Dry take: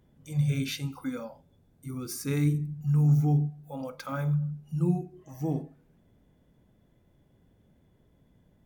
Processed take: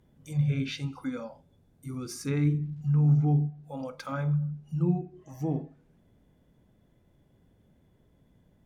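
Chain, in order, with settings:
0:01.87–0:03.00: surface crackle 190 per second −57 dBFS
treble cut that deepens with the level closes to 2,900 Hz, closed at −25 dBFS

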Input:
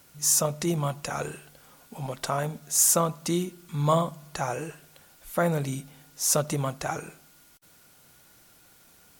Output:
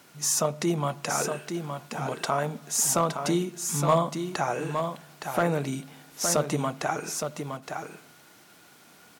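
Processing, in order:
low-pass filter 3,800 Hz 6 dB per octave
notch filter 530 Hz, Q 12
in parallel at +1 dB: downward compressor, threshold −35 dBFS, peak gain reduction 16 dB
on the sum: high-pass filter 180 Hz 12 dB per octave
hard clipping −13 dBFS, distortion −25 dB
single-tap delay 866 ms −6.5 dB

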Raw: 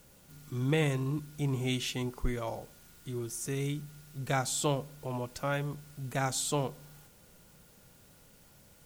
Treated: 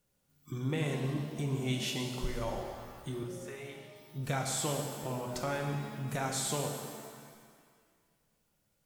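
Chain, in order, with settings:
noise reduction from a noise print of the clip's start 22 dB
downward compressor 2.5 to 1, threshold −38 dBFS, peak gain reduction 10 dB
0:03.23–0:03.96: three-way crossover with the lows and the highs turned down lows −22 dB, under 500 Hz, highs −18 dB, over 2,900 Hz
reverb with rising layers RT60 1.8 s, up +7 semitones, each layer −8 dB, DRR 2 dB
level +2.5 dB

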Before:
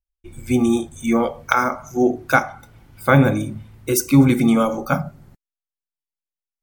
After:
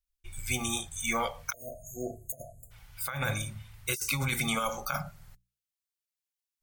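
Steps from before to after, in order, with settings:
guitar amp tone stack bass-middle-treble 10-0-10
mains-hum notches 60/120/180 Hz
compressor whose output falls as the input rises −32 dBFS, ratio −1
time-frequency box erased 0:01.53–0:02.71, 720–6,400 Hz
level +1 dB

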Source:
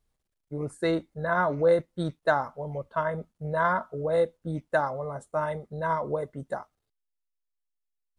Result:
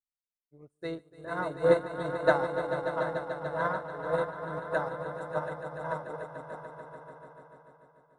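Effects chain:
echo that builds up and dies away 146 ms, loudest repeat 5, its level −6.5 dB
expander for the loud parts 2.5 to 1, over −42 dBFS

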